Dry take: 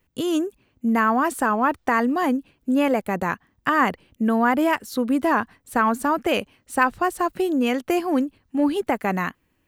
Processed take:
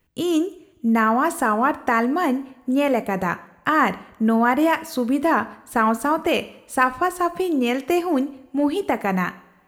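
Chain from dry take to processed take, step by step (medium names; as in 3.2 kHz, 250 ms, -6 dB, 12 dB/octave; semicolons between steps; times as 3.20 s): two-slope reverb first 0.55 s, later 1.8 s, from -18 dB, DRR 12 dB; trim +1 dB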